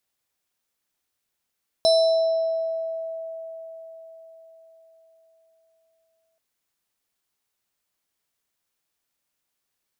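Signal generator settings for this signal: FM tone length 4.53 s, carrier 653 Hz, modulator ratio 7.14, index 0.71, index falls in 1.56 s exponential, decay 4.78 s, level -13.5 dB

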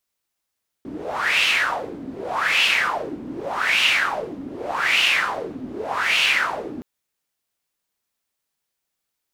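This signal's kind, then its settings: wind-like swept noise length 5.97 s, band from 260 Hz, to 2.8 kHz, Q 5.3, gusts 5, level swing 15.5 dB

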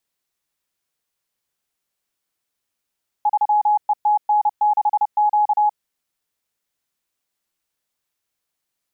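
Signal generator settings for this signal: Morse "3ETN6Q" 30 wpm 839 Hz -13 dBFS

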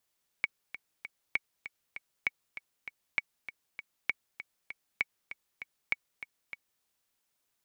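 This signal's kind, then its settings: metronome 197 bpm, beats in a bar 3, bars 7, 2.24 kHz, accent 13 dB -14 dBFS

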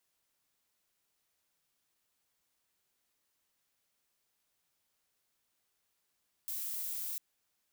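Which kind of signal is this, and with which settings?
noise violet, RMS -38.5 dBFS 0.70 s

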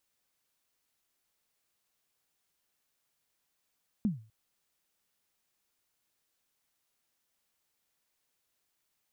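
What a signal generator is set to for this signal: kick drum length 0.25 s, from 230 Hz, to 110 Hz, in 143 ms, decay 0.37 s, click off, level -22 dB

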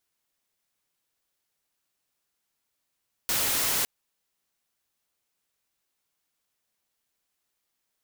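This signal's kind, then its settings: noise white, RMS -26 dBFS 0.56 s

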